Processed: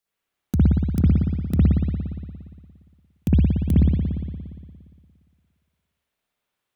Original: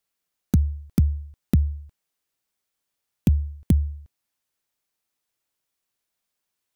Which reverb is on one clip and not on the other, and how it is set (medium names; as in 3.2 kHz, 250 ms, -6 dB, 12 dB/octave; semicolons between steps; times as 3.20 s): spring tank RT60 1.9 s, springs 58 ms, chirp 70 ms, DRR -9.5 dB; trim -4.5 dB